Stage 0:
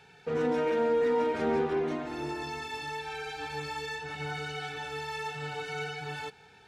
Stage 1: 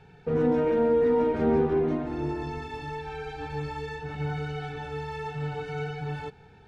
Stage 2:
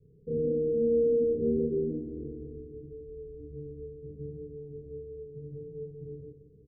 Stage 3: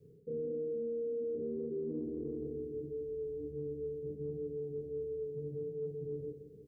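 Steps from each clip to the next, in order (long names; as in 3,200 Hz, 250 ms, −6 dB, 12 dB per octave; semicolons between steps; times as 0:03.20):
spectral tilt −3.5 dB per octave
Butterworth low-pass 510 Hz 72 dB per octave; double-tracking delay 30 ms −3 dB; repeating echo 172 ms, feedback 60%, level −13 dB; level −7.5 dB
high-pass filter 340 Hz 6 dB per octave; brickwall limiter −28.5 dBFS, peak gain reduction 7.5 dB; reversed playback; downward compressor 6 to 1, threshold −44 dBFS, peak gain reduction 12 dB; reversed playback; level +8 dB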